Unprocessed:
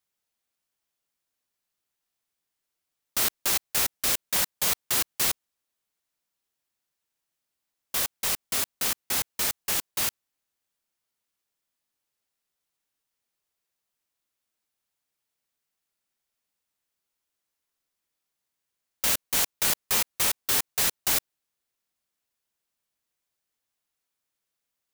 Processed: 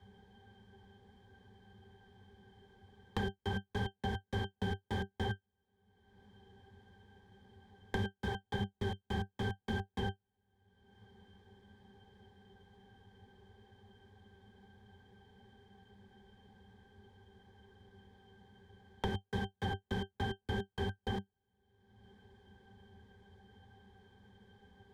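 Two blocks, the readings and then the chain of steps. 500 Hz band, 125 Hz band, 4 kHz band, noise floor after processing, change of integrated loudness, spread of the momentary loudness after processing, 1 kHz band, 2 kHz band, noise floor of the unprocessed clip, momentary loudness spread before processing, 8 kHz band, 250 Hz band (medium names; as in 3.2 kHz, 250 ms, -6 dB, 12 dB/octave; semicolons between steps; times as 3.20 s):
-1.0 dB, +8.5 dB, -16.0 dB, -85 dBFS, -14.5 dB, 3 LU, -5.5 dB, -9.5 dB, -84 dBFS, 5 LU, -36.0 dB, +4.0 dB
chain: integer overflow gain 23 dB; tilt EQ -2.5 dB/octave; pitch-class resonator G, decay 0.1 s; three bands compressed up and down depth 100%; trim +9.5 dB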